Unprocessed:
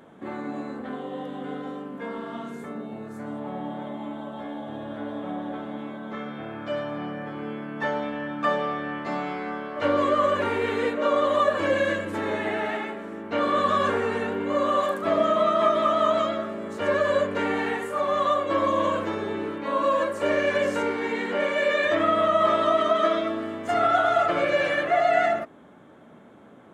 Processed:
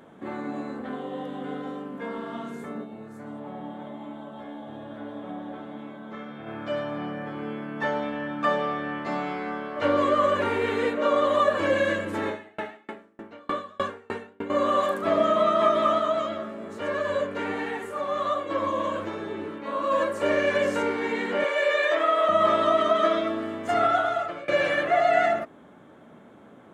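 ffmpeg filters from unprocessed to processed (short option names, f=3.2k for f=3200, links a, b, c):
-filter_complex "[0:a]asplit=3[a][b][c];[a]afade=t=out:st=2.83:d=0.02[d];[b]flanger=delay=5.4:depth=5:regen=-78:speed=1.2:shape=triangular,afade=t=in:st=2.83:d=0.02,afade=t=out:st=6.46:d=0.02[e];[c]afade=t=in:st=6.46:d=0.02[f];[d][e][f]amix=inputs=3:normalize=0,asettb=1/sr,asplit=3[g][h][i];[g]atrim=end=12.284[j];[h]atrim=start=12.28:end=14.5,asetpts=PTS-STARTPTS,afade=t=in:d=0.004:c=qsin,afade=t=out:st=2.216:d=0.004:c=qsin,aeval=exprs='val(0)*pow(10,-35*if(lt(mod(3.3*n/s,1),2*abs(3.3)/1000),1-mod(3.3*n/s,1)/(2*abs(3.3)/1000),(mod(3.3*n/s,1)-2*abs(3.3)/1000)/(1-2*abs(3.3)/1000))/20)':c=same[k];[i]atrim=start=14.496[l];[j][k]acrossfade=d=0.004:c1=hsin:c2=qsin[m];[m][l]acrossfade=d=0.004:c1=qsin:c2=hsin,asplit=3[n][o][p];[n]afade=t=out:st=15.98:d=0.02[q];[o]flanger=delay=6:depth=8.4:regen=58:speed=1.3:shape=sinusoidal,afade=t=in:st=15.98:d=0.02,afade=t=out:st=19.9:d=0.02[r];[p]afade=t=in:st=19.9:d=0.02[s];[q][r][s]amix=inputs=3:normalize=0,asettb=1/sr,asplit=3[t][u][v];[t]atrim=end=21.444[w];[u]atrim=start=21.44:end=22.29,asetpts=PTS-STARTPTS,afade=t=in:d=0.004:c=qsin,afade=t=out:st=0.846:d=0.004:c=qsin,highpass=f=400:w=0.5412,highpass=f=400:w=1.3066[x];[v]atrim=start=22.286[y];[w][x]acrossfade=d=0.004:c1=hsin:c2=qsin[z];[z][y]acrossfade=d=0.004:c1=qsin:c2=hsin,asplit=2[aa][ab];[aa]atrim=end=24.48,asetpts=PTS-STARTPTS,afade=t=out:st=23.82:d=0.66:silence=0.0841395[ac];[ab]atrim=start=24.48,asetpts=PTS-STARTPTS,afade=t=in:d=0.004:c=hsin:silence=0.0841395[ad];[ac][ad]concat=n=2:v=0:a=1"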